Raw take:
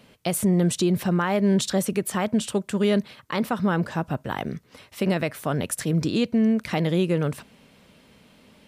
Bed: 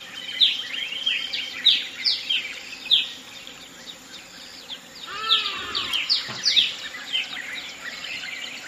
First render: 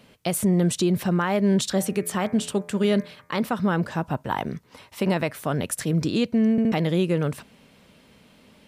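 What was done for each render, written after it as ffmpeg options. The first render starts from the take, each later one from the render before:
-filter_complex "[0:a]asettb=1/sr,asplit=3[a][b][c];[a]atrim=end=1.704[d];[b]atrim=start=1.7:end=3.32,asetpts=PTS-STARTPTS,afade=t=in:d=0.004:c=qsin,afade=t=out:st=1.616:d=0.004:c=qsin,bandreject=f=85.72:t=h:w=4,bandreject=f=171.44:t=h:w=4,bandreject=f=257.16:t=h:w=4,bandreject=f=342.88:t=h:w=4,bandreject=f=428.6:t=h:w=4,bandreject=f=514.32:t=h:w=4,bandreject=f=600.04:t=h:w=4,bandreject=f=685.76:t=h:w=4,bandreject=f=771.48:t=h:w=4,bandreject=f=857.2:t=h:w=4,bandreject=f=942.92:t=h:w=4,bandreject=f=1.02864k:t=h:w=4,bandreject=f=1.11436k:t=h:w=4,bandreject=f=1.20008k:t=h:w=4,bandreject=f=1.2858k:t=h:w=4,bandreject=f=1.37152k:t=h:w=4,bandreject=f=1.45724k:t=h:w=4,bandreject=f=1.54296k:t=h:w=4,bandreject=f=1.62868k:t=h:w=4,bandreject=f=1.7144k:t=h:w=4,bandreject=f=1.80012k:t=h:w=4,bandreject=f=1.88584k:t=h:w=4,bandreject=f=1.97156k:t=h:w=4,bandreject=f=2.05728k:t=h:w=4,bandreject=f=2.143k:t=h:w=4,bandreject=f=2.22872k:t=h:w=4,bandreject=f=2.31444k:t=h:w=4,bandreject=f=2.40016k:t=h:w=4,bandreject=f=2.48588k:t=h:w=4[e];[c]atrim=start=3.316[f];[d][e]acrossfade=d=0.004:c1=hsin:c2=qsin[g];[g][f]acrossfade=d=0.004:c1=qsin:c2=hsin,asettb=1/sr,asplit=3[h][i][j];[h]atrim=end=4.024[k];[i]atrim=start=4.02:end=5.29,asetpts=PTS-STARTPTS,afade=t=in:d=0.004:c=qsin,afade=t=out:st=1.266:d=0.004:c=qsin,equalizer=f=930:t=o:w=0.37:g=7.5[l];[j]atrim=start=5.286[m];[k][l]acrossfade=d=0.004:c1=hsin:c2=qsin[n];[n][m]acrossfade=d=0.004:c1=qsin:c2=hsin,asplit=4[o][p][q][r];[o]atrim=end=6.582[s];[p]atrim=start=6.508:end=6.582[t];[q]atrim=start=6.508:end=6.582[u];[r]atrim=start=6.718[v];[s][t]acrossfade=d=0.004:c1=hsin:c2=hsin[w];[w][u]acrossfade=d=0.004:c1=hsin:c2=hsin[x];[x][v]acrossfade=d=0.004:c1=hsin:c2=hsin"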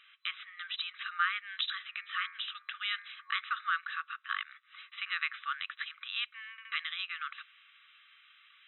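-af "afftfilt=real='re*between(b*sr/4096,1100,4000)':imag='im*between(b*sr/4096,1100,4000)':win_size=4096:overlap=0.75"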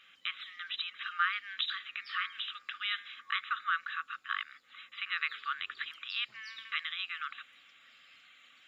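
-filter_complex "[1:a]volume=-32dB[a];[0:a][a]amix=inputs=2:normalize=0"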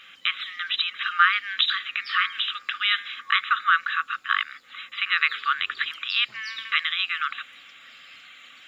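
-af "volume=12dB"

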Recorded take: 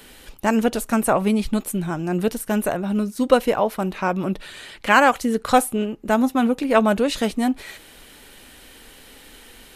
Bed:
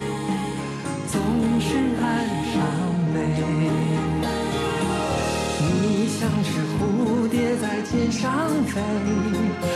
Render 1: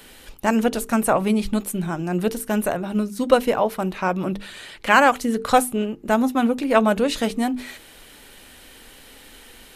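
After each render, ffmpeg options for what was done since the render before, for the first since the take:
-af "bandreject=f=50:t=h:w=6,bandreject=f=100:t=h:w=6,bandreject=f=150:t=h:w=6,bandreject=f=200:t=h:w=6,bandreject=f=250:t=h:w=6,bandreject=f=300:t=h:w=6,bandreject=f=350:t=h:w=6,bandreject=f=400:t=h:w=6,bandreject=f=450:t=h:w=6"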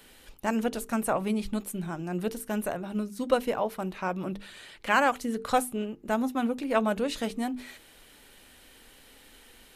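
-af "volume=-8.5dB"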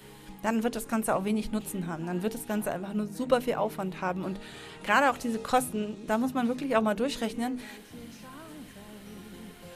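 -filter_complex "[1:a]volume=-23.5dB[a];[0:a][a]amix=inputs=2:normalize=0"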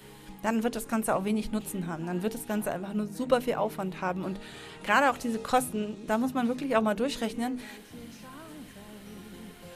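-af anull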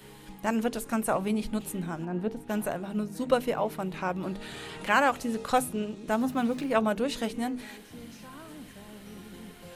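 -filter_complex "[0:a]asplit=3[a][b][c];[a]afade=t=out:st=2.04:d=0.02[d];[b]lowpass=f=1.1k:p=1,afade=t=in:st=2.04:d=0.02,afade=t=out:st=2.48:d=0.02[e];[c]afade=t=in:st=2.48:d=0.02[f];[d][e][f]amix=inputs=3:normalize=0,asettb=1/sr,asplit=3[g][h][i];[g]atrim=end=3.944[j];[h]atrim=start=3.94:end=5.03,asetpts=PTS-STARTPTS,afade=t=in:d=0.004:c=qsin,afade=t=out:st=1.086:d=0.004:c=qsin,acompressor=mode=upward:threshold=-33dB:ratio=2.5:attack=3.2:release=140:knee=2.83:detection=peak[k];[i]atrim=start=5.026[l];[j][k]acrossfade=d=0.004:c1=hsin:c2=qsin[m];[m][l]acrossfade=d=0.004:c1=qsin:c2=hsin,asettb=1/sr,asplit=3[n][o][p];[n]atrim=end=6.184[q];[o]atrim=start=6.18:end=6.69,asetpts=PTS-STARTPTS,afade=t=in:d=0.004:c=qsin,afade=t=out:st=0.506:d=0.004:c=qsin,aeval=exprs='val(0)+0.5*0.00596*sgn(val(0))':c=same[r];[p]atrim=start=6.686[s];[q][r]acrossfade=d=0.004:c1=hsin:c2=qsin[t];[t][s]acrossfade=d=0.004:c1=qsin:c2=hsin"

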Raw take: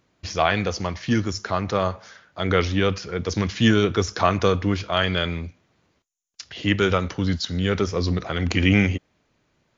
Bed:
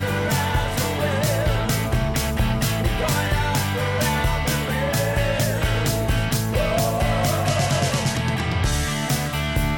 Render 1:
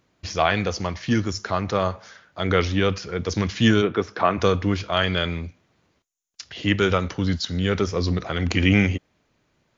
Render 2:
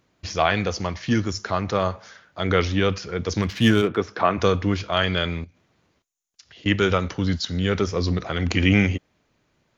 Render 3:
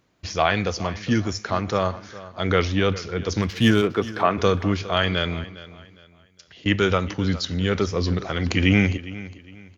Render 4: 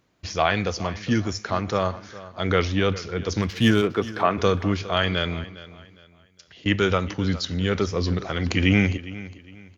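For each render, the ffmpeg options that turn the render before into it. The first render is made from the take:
-filter_complex "[0:a]asplit=3[a][b][c];[a]afade=t=out:st=3.81:d=0.02[d];[b]highpass=170,lowpass=2.5k,afade=t=in:st=3.81:d=0.02,afade=t=out:st=4.37:d=0.02[e];[c]afade=t=in:st=4.37:d=0.02[f];[d][e][f]amix=inputs=3:normalize=0"
-filter_complex "[0:a]asettb=1/sr,asplit=3[a][b][c];[a]atrim=end=3.424[d];[b]atrim=start=3.42:end=3.97,asetpts=PTS-STARTPTS,afade=t=in:d=0.004:c=qsin,afade=t=out:st=0.546:d=0.004:c=qsin,adynamicsmooth=sensitivity=6:basefreq=3.7k[e];[c]atrim=start=3.966[f];[d][e]acrossfade=d=0.004:c1=hsin:c2=qsin[g];[g][f]acrossfade=d=0.004:c1=qsin:c2=hsin,asettb=1/sr,asplit=3[h][i][j];[h]atrim=end=5.444[k];[i]atrim=start=5.44:end=6.66,asetpts=PTS-STARTPTS,afade=t=in:d=0.004:c=qsin,afade=t=out:st=1.216:d=0.004:c=qsin,acompressor=threshold=-48dB:ratio=3:attack=3.2:release=140:knee=1:detection=peak[l];[j]atrim=start=6.656[m];[k][l]acrossfade=d=0.004:c1=hsin:c2=qsin[n];[n][m]acrossfade=d=0.004:c1=qsin:c2=hsin"
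-af "aecho=1:1:408|816|1224:0.141|0.0438|0.0136"
-af "volume=-1dB"

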